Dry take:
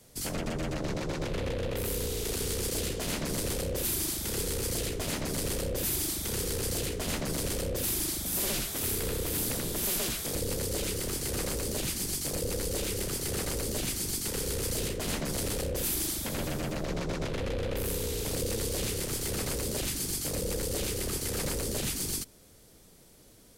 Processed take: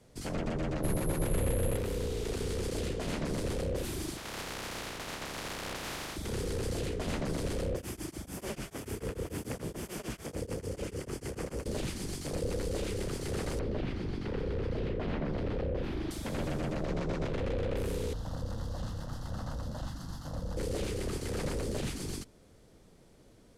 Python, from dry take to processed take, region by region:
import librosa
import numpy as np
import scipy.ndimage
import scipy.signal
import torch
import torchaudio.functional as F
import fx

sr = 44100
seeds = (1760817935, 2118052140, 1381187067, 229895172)

y = fx.chain(x, sr, fx.resample_bad(factor=4, down='filtered', up='zero_stuff'),
    fx.low_shelf(hz=130.0, db=6.0), at=(0.83, 1.77))
y = fx.spec_flatten(y, sr, power=0.14, at=(4.16, 6.15), fade=0.02)
y = fx.peak_eq(y, sr, hz=8600.0, db=-3.5, octaves=0.78, at=(4.16, 6.15), fade=0.02)
y = fx.chain(y, sr, fx.highpass(hz=47.0, slope=12),
    fx.peak_eq(hz=3900.0, db=-10.0, octaves=0.32),
    fx.tremolo_abs(hz=6.8), at=(7.75, 11.66))
y = fx.chain(y, sr, fx.air_absorb(metres=330.0),
    fx.env_flatten(amount_pct=50), at=(13.59, 16.11))
y = fx.chain(y, sr, fx.median_filter(points=5),
    fx.fixed_phaser(hz=970.0, stages=4), at=(18.13, 20.57))
y = scipy.signal.sosfilt(scipy.signal.butter(2, 10000.0, 'lowpass', fs=sr, output='sos'), y)
y = fx.high_shelf(y, sr, hz=3000.0, db=-11.5)